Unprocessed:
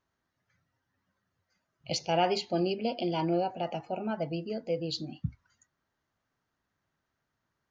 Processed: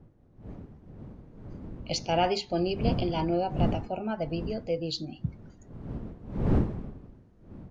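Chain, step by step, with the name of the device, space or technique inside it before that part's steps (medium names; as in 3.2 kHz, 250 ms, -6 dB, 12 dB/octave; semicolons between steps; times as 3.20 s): smartphone video outdoors (wind noise 200 Hz -35 dBFS; level rider gain up to 10 dB; trim -8.5 dB; AAC 96 kbps 24 kHz)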